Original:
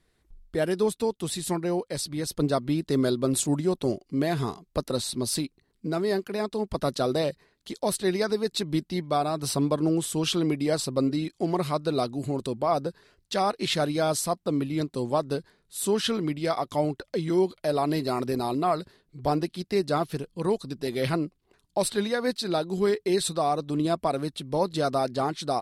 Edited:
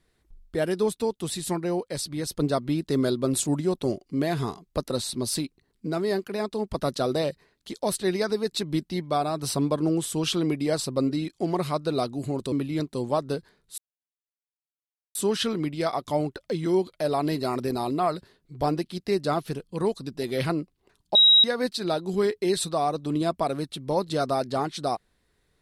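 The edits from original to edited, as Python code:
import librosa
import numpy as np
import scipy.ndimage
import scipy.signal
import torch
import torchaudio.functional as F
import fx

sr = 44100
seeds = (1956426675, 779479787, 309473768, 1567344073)

y = fx.edit(x, sr, fx.cut(start_s=12.52, length_s=2.01),
    fx.insert_silence(at_s=15.79, length_s=1.37),
    fx.bleep(start_s=21.79, length_s=0.29, hz=3830.0, db=-12.5), tone=tone)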